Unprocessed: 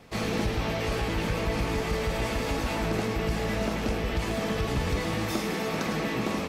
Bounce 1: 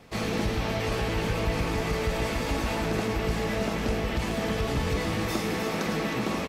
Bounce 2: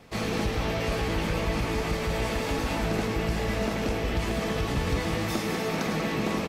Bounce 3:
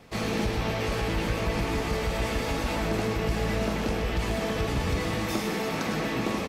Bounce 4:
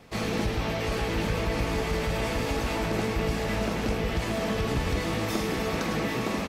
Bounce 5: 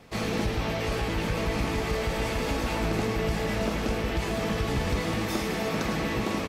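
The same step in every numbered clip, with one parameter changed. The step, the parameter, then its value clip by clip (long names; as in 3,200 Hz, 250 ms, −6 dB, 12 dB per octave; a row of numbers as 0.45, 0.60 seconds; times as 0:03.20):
repeating echo, delay time: 314, 194, 124, 804, 1,245 milliseconds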